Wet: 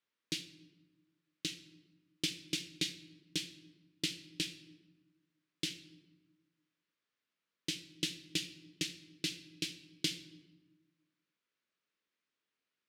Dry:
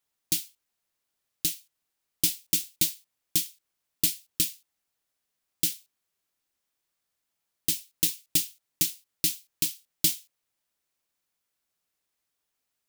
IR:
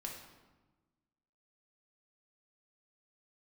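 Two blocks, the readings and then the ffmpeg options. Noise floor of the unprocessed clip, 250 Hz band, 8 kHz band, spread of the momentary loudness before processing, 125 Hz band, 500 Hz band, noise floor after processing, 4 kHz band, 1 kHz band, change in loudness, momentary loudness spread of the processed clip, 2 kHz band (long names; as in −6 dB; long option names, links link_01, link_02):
−82 dBFS, −2.0 dB, −15.5 dB, 7 LU, −5.5 dB, −1.0 dB, below −85 dBFS, −4.5 dB, can't be measured, −12.0 dB, 11 LU, −1.0 dB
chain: -filter_complex "[0:a]highpass=190,lowpass=3300,equalizer=frequency=770:width_type=o:width=0.58:gain=-13,asplit=2[link_01][link_02];[1:a]atrim=start_sample=2205,adelay=21[link_03];[link_02][link_03]afir=irnorm=-1:irlink=0,volume=-6.5dB[link_04];[link_01][link_04]amix=inputs=2:normalize=0"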